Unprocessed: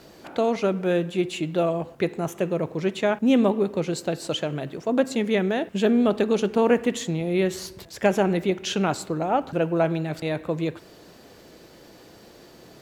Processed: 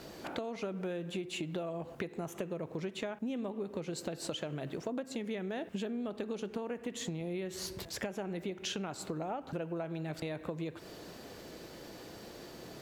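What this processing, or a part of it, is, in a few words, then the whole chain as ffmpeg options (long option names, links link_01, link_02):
serial compression, peaks first: -af "acompressor=threshold=-29dB:ratio=6,acompressor=threshold=-37dB:ratio=2.5"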